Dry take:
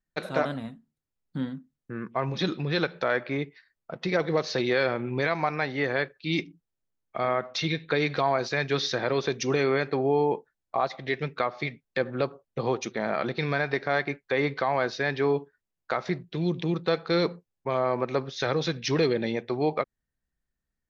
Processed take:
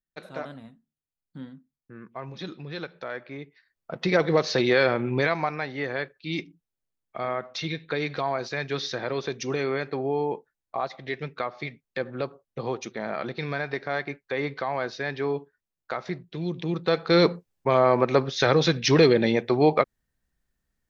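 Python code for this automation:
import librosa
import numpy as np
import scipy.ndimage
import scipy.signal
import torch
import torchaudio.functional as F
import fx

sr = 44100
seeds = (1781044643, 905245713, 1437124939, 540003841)

y = fx.gain(x, sr, db=fx.line((3.43, -9.0), (4.0, 4.0), (5.16, 4.0), (5.63, -3.0), (16.54, -3.0), (17.24, 6.5)))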